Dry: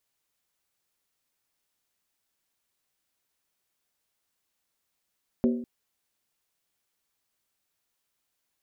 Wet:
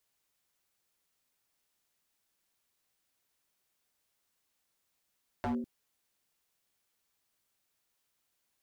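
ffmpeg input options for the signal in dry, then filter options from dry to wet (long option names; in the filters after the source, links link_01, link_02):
-f lavfi -i "aevalsrc='0.126*pow(10,-3*t/0.64)*sin(2*PI*240*t)+0.0631*pow(10,-3*t/0.507)*sin(2*PI*382.6*t)+0.0316*pow(10,-3*t/0.438)*sin(2*PI*512.6*t)+0.0158*pow(10,-3*t/0.422)*sin(2*PI*551*t)+0.00794*pow(10,-3*t/0.393)*sin(2*PI*636.7*t)':duration=0.2:sample_rate=44100"
-filter_complex "[0:a]acrossover=split=290|3000[link_01][link_02][link_03];[link_02]acompressor=threshold=-35dB:ratio=6[link_04];[link_01][link_04][link_03]amix=inputs=3:normalize=0,aeval=exprs='0.0398*(abs(mod(val(0)/0.0398+3,4)-2)-1)':channel_layout=same"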